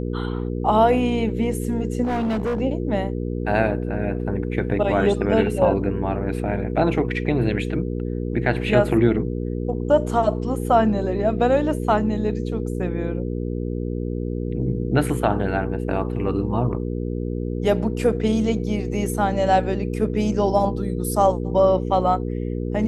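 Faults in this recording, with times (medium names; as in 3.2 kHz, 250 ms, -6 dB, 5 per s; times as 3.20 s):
hum 60 Hz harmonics 8 -26 dBFS
2.03–2.61 s: clipped -20 dBFS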